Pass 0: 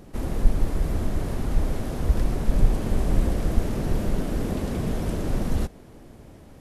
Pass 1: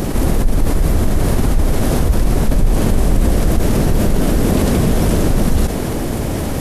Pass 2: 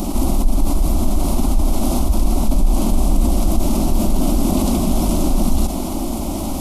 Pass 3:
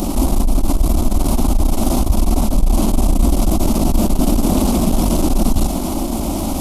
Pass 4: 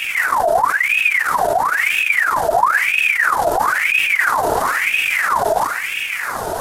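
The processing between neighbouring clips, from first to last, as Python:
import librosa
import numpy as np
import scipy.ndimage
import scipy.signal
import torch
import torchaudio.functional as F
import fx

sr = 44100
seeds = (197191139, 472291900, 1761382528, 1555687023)

y1 = fx.high_shelf(x, sr, hz=6500.0, db=7.0)
y1 = fx.env_flatten(y1, sr, amount_pct=70)
y1 = y1 * librosa.db_to_amplitude(1.5)
y2 = fx.fixed_phaser(y1, sr, hz=460.0, stages=6)
y3 = fx.diode_clip(y2, sr, knee_db=-15.0)
y3 = y3 * librosa.db_to_amplitude(4.0)
y4 = y3 + 10.0 ** (-11.5 / 20.0) * np.pad(y3, (int(80 * sr / 1000.0), 0))[:len(y3)]
y4 = fx.ring_lfo(y4, sr, carrier_hz=1600.0, swing_pct=60, hz=1.0)
y4 = y4 * librosa.db_to_amplitude(-1.0)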